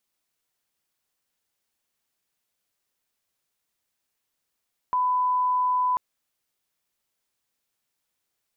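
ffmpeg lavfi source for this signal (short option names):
-f lavfi -i "sine=f=1000:d=1.04:r=44100,volume=-1.94dB"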